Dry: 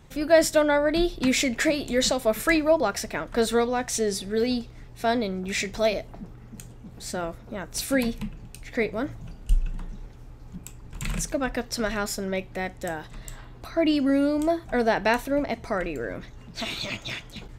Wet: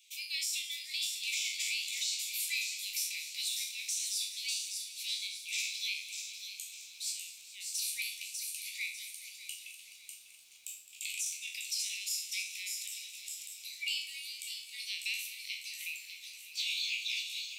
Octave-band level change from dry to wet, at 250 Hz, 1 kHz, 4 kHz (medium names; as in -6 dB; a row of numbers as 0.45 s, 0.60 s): under -40 dB, under -40 dB, -1.0 dB